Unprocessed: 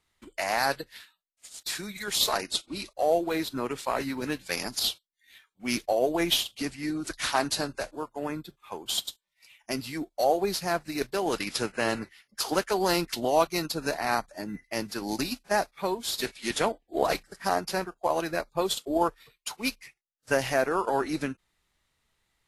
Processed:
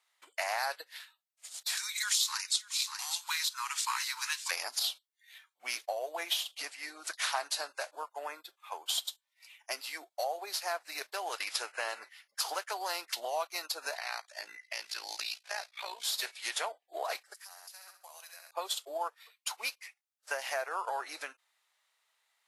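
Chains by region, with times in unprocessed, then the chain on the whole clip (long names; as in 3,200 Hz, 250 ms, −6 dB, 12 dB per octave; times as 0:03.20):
0:01.77–0:04.51: Butterworth high-pass 900 Hz 96 dB per octave + parametric band 6,600 Hz +13 dB 1.7 octaves + single-tap delay 592 ms −14.5 dB
0:13.95–0:16.04: meter weighting curve D + downward compressor 3 to 1, threshold −32 dBFS + amplitude modulation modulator 57 Hz, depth 60%
0:17.34–0:18.51: first difference + flutter between parallel walls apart 11.2 metres, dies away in 0.45 s + downward compressor 16 to 1, threshold −45 dBFS
whole clip: downward compressor 4 to 1, threshold −29 dBFS; high-pass filter 630 Hz 24 dB per octave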